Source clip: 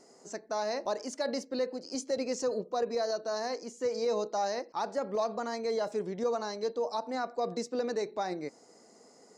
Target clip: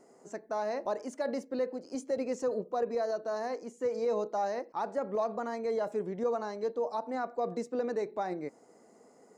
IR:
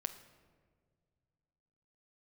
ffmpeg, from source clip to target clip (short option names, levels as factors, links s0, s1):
-af "equalizer=f=4900:t=o:w=1.3:g=-13"